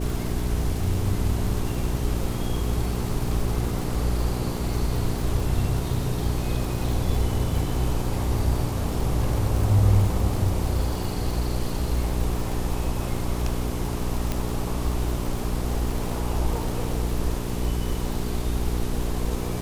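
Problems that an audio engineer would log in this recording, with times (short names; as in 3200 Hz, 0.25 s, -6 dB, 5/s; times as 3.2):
crackle 100/s -29 dBFS
hum 60 Hz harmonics 7 -29 dBFS
14.32 pop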